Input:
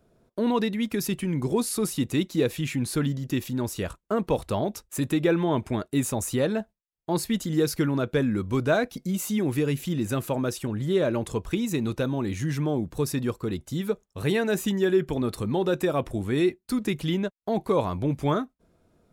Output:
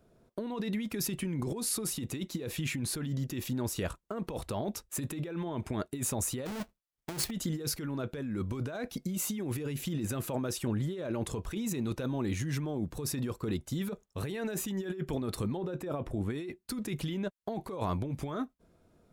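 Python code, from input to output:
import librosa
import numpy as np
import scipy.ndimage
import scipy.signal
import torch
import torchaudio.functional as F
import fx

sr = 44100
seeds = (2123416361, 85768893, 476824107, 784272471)

y = fx.halfwave_hold(x, sr, at=(6.45, 7.29), fade=0.02)
y = fx.high_shelf(y, sr, hz=2100.0, db=-9.5, at=(15.57, 16.3))
y = fx.over_compress(y, sr, threshold_db=-29.0, ratio=-1.0)
y = F.gain(torch.from_numpy(y), -5.0).numpy()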